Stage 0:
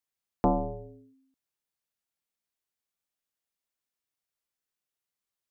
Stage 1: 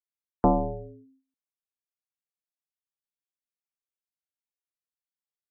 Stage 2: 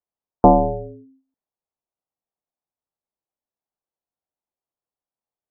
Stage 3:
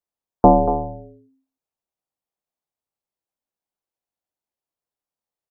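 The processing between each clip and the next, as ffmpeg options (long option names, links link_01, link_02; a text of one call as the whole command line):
ffmpeg -i in.wav -af "afftdn=noise_reduction=18:noise_floor=-45,volume=3.5dB" out.wav
ffmpeg -i in.wav -af "lowpass=frequency=810:width_type=q:width=1.6,volume=7dB" out.wav
ffmpeg -i in.wav -af "aecho=1:1:236:0.282" out.wav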